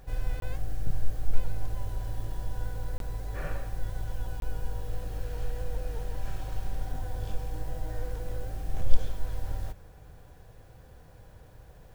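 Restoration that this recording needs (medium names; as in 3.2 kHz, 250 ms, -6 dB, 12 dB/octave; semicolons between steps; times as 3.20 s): interpolate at 0.40/2.98/4.40 s, 22 ms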